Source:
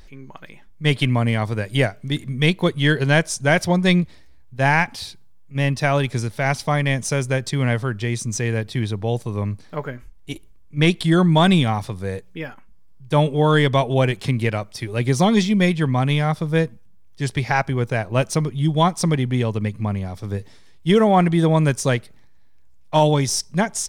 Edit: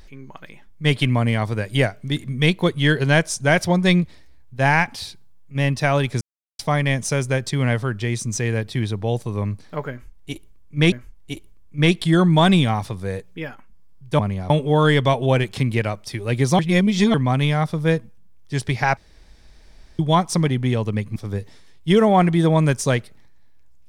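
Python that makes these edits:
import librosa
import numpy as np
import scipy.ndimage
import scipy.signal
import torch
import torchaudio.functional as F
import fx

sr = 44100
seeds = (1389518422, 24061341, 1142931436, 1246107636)

y = fx.edit(x, sr, fx.silence(start_s=6.21, length_s=0.38),
    fx.repeat(start_s=9.91, length_s=1.01, count=2),
    fx.reverse_span(start_s=15.27, length_s=0.55),
    fx.room_tone_fill(start_s=17.65, length_s=1.02),
    fx.move(start_s=19.84, length_s=0.31, to_s=13.18), tone=tone)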